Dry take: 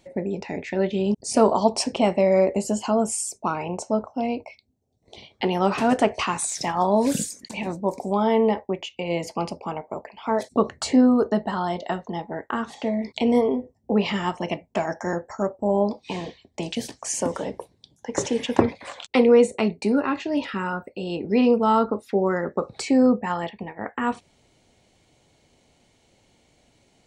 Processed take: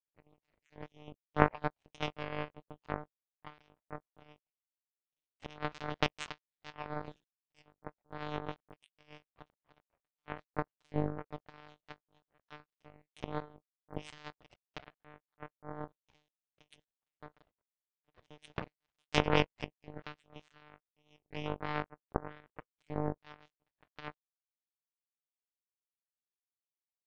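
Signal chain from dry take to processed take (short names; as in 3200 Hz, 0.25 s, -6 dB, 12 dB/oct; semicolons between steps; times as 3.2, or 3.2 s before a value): frequency quantiser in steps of 2 st; monotone LPC vocoder at 8 kHz 150 Hz; power-law curve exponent 3; gain -1 dB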